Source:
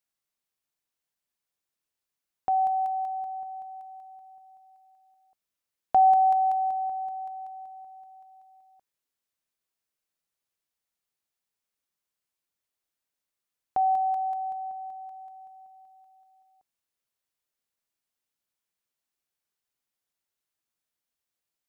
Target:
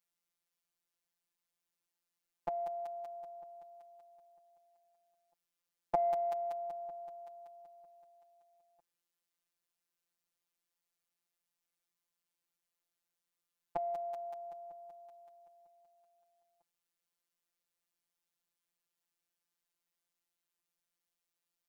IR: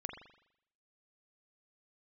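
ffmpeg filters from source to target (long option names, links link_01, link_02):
-af "afftfilt=real='hypot(re,im)*cos(PI*b)':imag='0':win_size=1024:overlap=0.75,aeval=exprs='0.15*(cos(1*acos(clip(val(0)/0.15,-1,1)))-cos(1*PI/2))+0.00211*(cos(7*acos(clip(val(0)/0.15,-1,1)))-cos(7*PI/2))':channel_layout=same,volume=2dB"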